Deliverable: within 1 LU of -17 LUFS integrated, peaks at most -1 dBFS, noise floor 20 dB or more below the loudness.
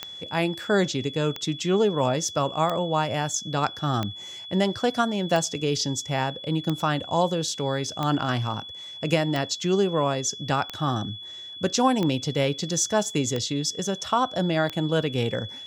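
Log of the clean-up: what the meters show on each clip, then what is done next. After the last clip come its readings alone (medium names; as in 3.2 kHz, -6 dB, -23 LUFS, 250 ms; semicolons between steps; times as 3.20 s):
clicks found 12; steady tone 3.4 kHz; tone level -37 dBFS; loudness -25.5 LUFS; peak level -8.0 dBFS; loudness target -17.0 LUFS
-> de-click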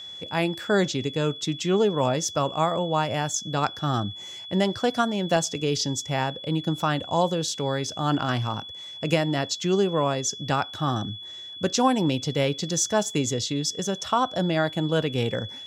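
clicks found 0; steady tone 3.4 kHz; tone level -37 dBFS
-> band-stop 3.4 kHz, Q 30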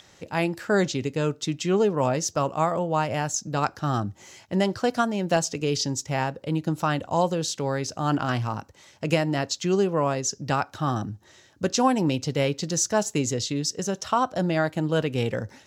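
steady tone not found; loudness -25.5 LUFS; peak level -7.5 dBFS; loudness target -17.0 LUFS
-> trim +8.5 dB; peak limiter -1 dBFS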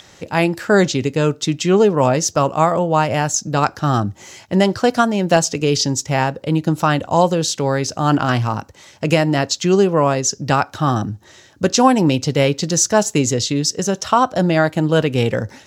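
loudness -17.0 LUFS; peak level -1.0 dBFS; noise floor -47 dBFS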